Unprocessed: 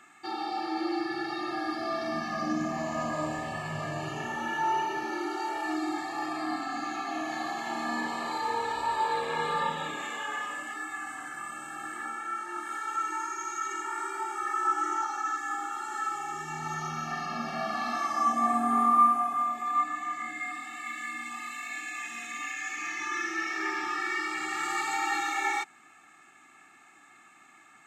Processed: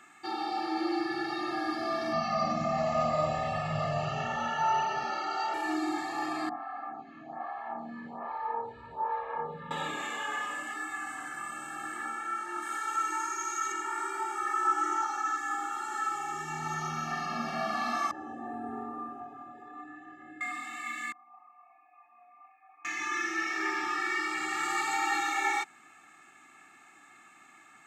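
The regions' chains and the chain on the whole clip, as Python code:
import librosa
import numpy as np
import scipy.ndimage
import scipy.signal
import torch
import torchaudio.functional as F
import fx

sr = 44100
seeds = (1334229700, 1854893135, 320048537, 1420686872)

y = fx.chain(x, sr, fx.lowpass(hz=5800.0, slope=24),
    fx.comb(ms=1.5, depth=0.97), at=(2.13, 5.54))
y = fx.chain(y, sr, fx.lowpass(hz=1100.0, slope=12),
    fx.peak_eq(hz=330.0, db=-14.5, octaves=0.47),
    fx.stagger_phaser(hz=1.2), at=(6.49, 9.71))
y = fx.chain(y, sr, fx.highpass(hz=130.0, slope=12),
    fx.high_shelf(hz=4100.0, db=5.0), at=(12.62, 13.72))
y = fx.chain(y, sr, fx.moving_average(points=40),
    fx.comb(ms=2.3, depth=0.75), at=(18.11, 20.41))
y = fx.chain(y, sr, fx.envelope_sharpen(power=1.5),
    fx.formant_cascade(vowel='a'), at=(21.12, 22.85))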